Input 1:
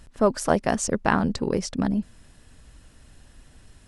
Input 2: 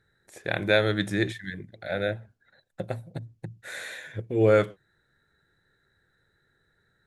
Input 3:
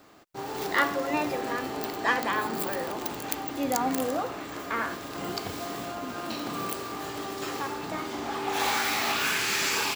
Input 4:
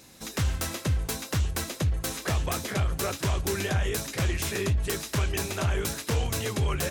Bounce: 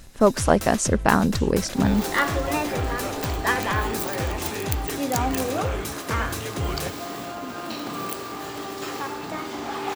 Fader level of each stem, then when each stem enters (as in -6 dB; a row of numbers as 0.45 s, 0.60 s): +3.0 dB, -15.0 dB, +2.0 dB, -2.0 dB; 0.00 s, 1.15 s, 1.40 s, 0.00 s